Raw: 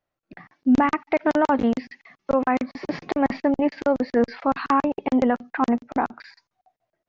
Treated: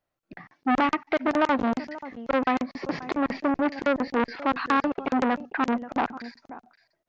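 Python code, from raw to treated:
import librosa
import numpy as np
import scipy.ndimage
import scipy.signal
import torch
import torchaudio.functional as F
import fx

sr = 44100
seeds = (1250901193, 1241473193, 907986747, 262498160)

p1 = x + fx.echo_single(x, sr, ms=533, db=-18.5, dry=0)
y = fx.transformer_sat(p1, sr, knee_hz=1400.0)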